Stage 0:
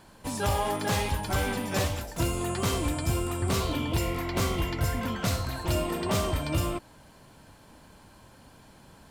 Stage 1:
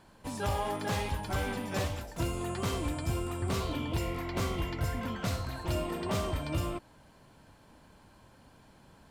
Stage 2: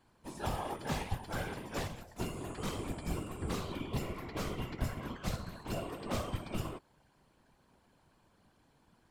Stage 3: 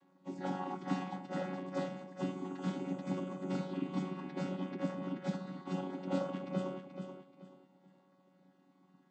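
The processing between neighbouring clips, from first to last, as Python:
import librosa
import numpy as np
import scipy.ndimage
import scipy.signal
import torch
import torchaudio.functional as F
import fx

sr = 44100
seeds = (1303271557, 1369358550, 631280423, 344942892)

y1 = fx.high_shelf(x, sr, hz=5100.0, db=-5.5)
y1 = y1 * 10.0 ** (-4.5 / 20.0)
y2 = fx.whisperise(y1, sr, seeds[0])
y2 = fx.upward_expand(y2, sr, threshold_db=-41.0, expansion=1.5)
y2 = y2 * 10.0 ** (-2.5 / 20.0)
y3 = fx.chord_vocoder(y2, sr, chord='bare fifth', root=54)
y3 = fx.echo_feedback(y3, sr, ms=431, feedback_pct=29, wet_db=-8.0)
y3 = y3 * 10.0 ** (2.5 / 20.0)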